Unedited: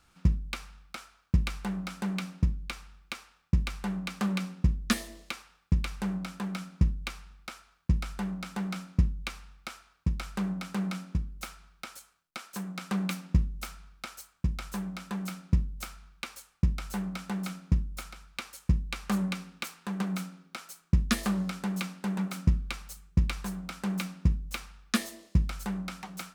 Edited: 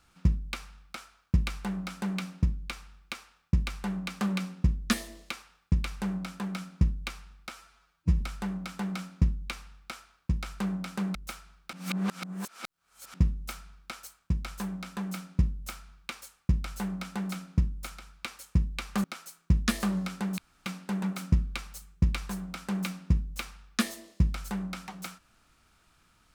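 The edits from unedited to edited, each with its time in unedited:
0:07.52–0:07.98: time-stretch 1.5×
0:10.92–0:11.29: remove
0:11.87–0:13.28: reverse
0:19.18–0:20.47: remove
0:21.81: splice in room tone 0.28 s

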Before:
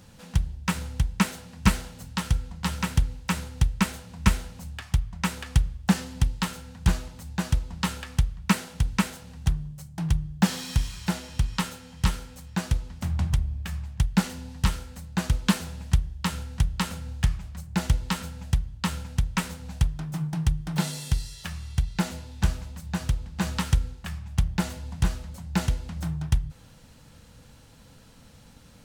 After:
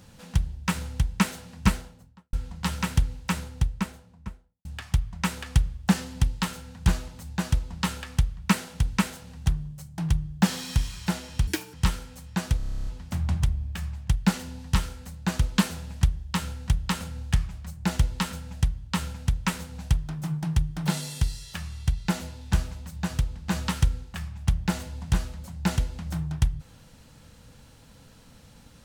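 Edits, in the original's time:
0:01.50–0:02.33: fade out and dull
0:03.16–0:04.65: fade out and dull
0:11.47–0:11.94: play speed 176%
0:12.77: stutter 0.03 s, 11 plays

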